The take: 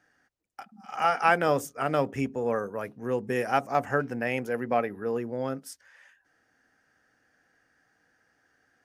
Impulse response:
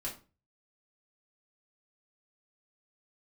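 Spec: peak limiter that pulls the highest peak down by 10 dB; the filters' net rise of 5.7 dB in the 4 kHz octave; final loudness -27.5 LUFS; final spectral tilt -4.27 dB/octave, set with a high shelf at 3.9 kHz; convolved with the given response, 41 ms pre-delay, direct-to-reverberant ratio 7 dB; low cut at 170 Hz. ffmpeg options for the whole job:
-filter_complex "[0:a]highpass=170,highshelf=f=3900:g=4.5,equalizer=f=4000:t=o:g=6,alimiter=limit=0.133:level=0:latency=1,asplit=2[s0][s1];[1:a]atrim=start_sample=2205,adelay=41[s2];[s1][s2]afir=irnorm=-1:irlink=0,volume=0.398[s3];[s0][s3]amix=inputs=2:normalize=0,volume=1.33"

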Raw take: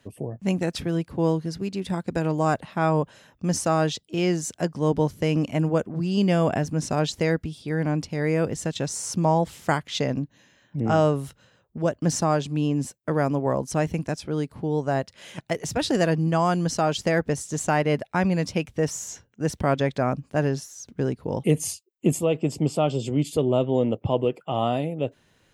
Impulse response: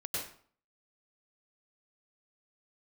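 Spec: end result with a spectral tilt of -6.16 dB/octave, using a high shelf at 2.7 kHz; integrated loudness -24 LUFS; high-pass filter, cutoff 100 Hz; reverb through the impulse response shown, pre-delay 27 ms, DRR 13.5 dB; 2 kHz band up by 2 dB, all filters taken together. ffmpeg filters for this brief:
-filter_complex "[0:a]highpass=100,equalizer=f=2000:t=o:g=5,highshelf=f=2700:g=-6,asplit=2[s0][s1];[1:a]atrim=start_sample=2205,adelay=27[s2];[s1][s2]afir=irnorm=-1:irlink=0,volume=0.15[s3];[s0][s3]amix=inputs=2:normalize=0,volume=1.12"

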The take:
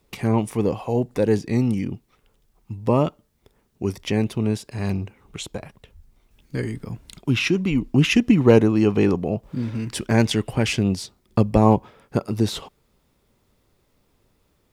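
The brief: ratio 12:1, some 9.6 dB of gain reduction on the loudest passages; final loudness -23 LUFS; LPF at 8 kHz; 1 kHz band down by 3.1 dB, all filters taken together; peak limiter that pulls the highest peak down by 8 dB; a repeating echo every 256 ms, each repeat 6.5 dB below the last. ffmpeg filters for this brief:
-af "lowpass=8000,equalizer=f=1000:t=o:g=-4,acompressor=threshold=0.112:ratio=12,alimiter=limit=0.133:level=0:latency=1,aecho=1:1:256|512|768|1024|1280|1536:0.473|0.222|0.105|0.0491|0.0231|0.0109,volume=1.78"

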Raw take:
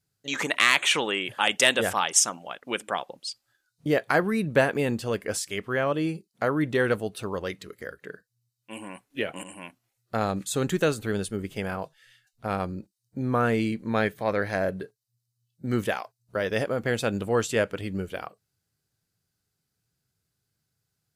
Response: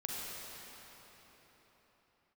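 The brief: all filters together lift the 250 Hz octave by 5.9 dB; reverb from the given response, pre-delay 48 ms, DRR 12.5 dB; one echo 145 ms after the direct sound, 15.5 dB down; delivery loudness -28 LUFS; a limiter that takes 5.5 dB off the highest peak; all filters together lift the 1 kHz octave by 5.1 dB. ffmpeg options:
-filter_complex "[0:a]equalizer=f=250:t=o:g=7,equalizer=f=1000:t=o:g=6.5,alimiter=limit=0.376:level=0:latency=1,aecho=1:1:145:0.168,asplit=2[s0][s1];[1:a]atrim=start_sample=2205,adelay=48[s2];[s1][s2]afir=irnorm=-1:irlink=0,volume=0.178[s3];[s0][s3]amix=inputs=2:normalize=0,volume=0.631"

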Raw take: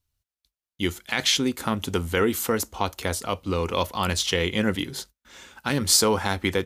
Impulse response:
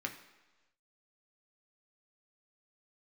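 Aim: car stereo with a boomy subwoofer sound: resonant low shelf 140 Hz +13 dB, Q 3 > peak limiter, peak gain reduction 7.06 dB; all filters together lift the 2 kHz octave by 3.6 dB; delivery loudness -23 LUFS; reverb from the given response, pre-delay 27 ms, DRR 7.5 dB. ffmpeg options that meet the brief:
-filter_complex "[0:a]equalizer=f=2000:t=o:g=4.5,asplit=2[s0][s1];[1:a]atrim=start_sample=2205,adelay=27[s2];[s1][s2]afir=irnorm=-1:irlink=0,volume=0.335[s3];[s0][s3]amix=inputs=2:normalize=0,lowshelf=f=140:t=q:w=3:g=13,volume=0.708,alimiter=limit=0.211:level=0:latency=1"

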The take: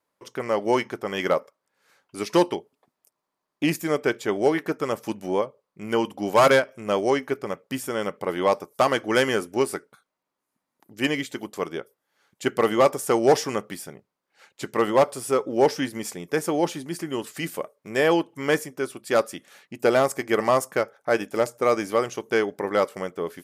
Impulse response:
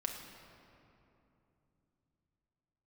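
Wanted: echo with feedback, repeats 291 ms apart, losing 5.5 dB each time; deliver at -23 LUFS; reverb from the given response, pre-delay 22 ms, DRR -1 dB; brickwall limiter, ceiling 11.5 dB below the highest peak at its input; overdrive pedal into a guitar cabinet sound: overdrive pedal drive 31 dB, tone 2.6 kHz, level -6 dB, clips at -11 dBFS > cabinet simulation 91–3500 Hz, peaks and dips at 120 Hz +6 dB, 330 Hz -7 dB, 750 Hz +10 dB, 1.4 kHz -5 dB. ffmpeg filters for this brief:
-filter_complex "[0:a]alimiter=limit=0.0944:level=0:latency=1,aecho=1:1:291|582|873|1164|1455|1746|2037:0.531|0.281|0.149|0.079|0.0419|0.0222|0.0118,asplit=2[s0][s1];[1:a]atrim=start_sample=2205,adelay=22[s2];[s1][s2]afir=irnorm=-1:irlink=0,volume=1[s3];[s0][s3]amix=inputs=2:normalize=0,asplit=2[s4][s5];[s5]highpass=f=720:p=1,volume=35.5,asoftclip=type=tanh:threshold=0.282[s6];[s4][s6]amix=inputs=2:normalize=0,lowpass=f=2600:p=1,volume=0.501,highpass=91,equalizer=f=120:t=q:w=4:g=6,equalizer=f=330:t=q:w=4:g=-7,equalizer=f=750:t=q:w=4:g=10,equalizer=f=1400:t=q:w=4:g=-5,lowpass=f=3500:w=0.5412,lowpass=f=3500:w=1.3066,volume=0.562"

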